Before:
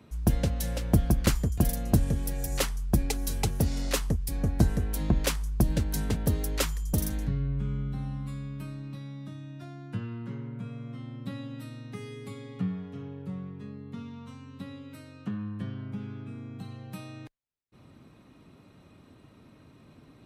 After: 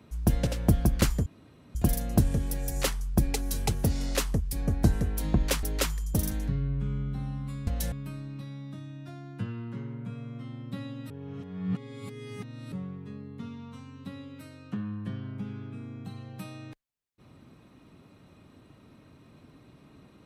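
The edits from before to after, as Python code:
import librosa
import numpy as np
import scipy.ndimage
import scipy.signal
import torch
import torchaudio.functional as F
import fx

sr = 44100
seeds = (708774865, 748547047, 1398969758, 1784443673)

y = fx.edit(x, sr, fx.move(start_s=0.47, length_s=0.25, to_s=8.46),
    fx.insert_room_tone(at_s=1.51, length_s=0.49),
    fx.cut(start_s=5.39, length_s=1.03),
    fx.reverse_span(start_s=11.64, length_s=1.62), tone=tone)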